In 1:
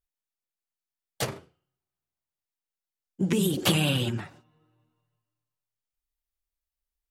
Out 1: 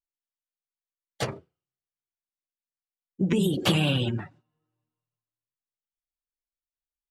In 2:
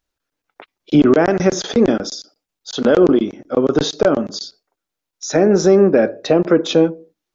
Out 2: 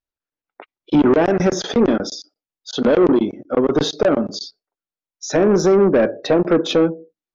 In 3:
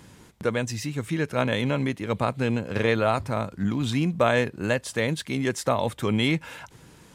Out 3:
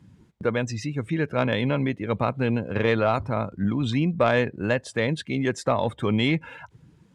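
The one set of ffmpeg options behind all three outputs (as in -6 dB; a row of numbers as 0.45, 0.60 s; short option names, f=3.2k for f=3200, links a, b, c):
-af "afftdn=nr=15:nf=-41,highshelf=f=8.2k:g=-12,asoftclip=type=tanh:threshold=-9.5dB,volume=1.5dB"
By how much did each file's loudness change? +0.5, -1.5, +1.0 LU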